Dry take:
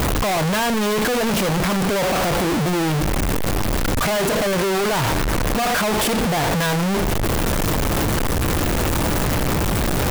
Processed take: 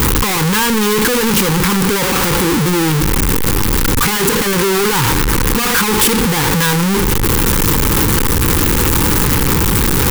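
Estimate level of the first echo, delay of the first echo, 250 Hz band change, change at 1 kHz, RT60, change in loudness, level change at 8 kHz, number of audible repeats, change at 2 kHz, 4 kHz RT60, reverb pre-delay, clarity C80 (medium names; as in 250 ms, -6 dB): no echo, no echo, +6.0 dB, +4.0 dB, no reverb, +7.0 dB, +10.0 dB, no echo, +6.5 dB, no reverb, no reverb, no reverb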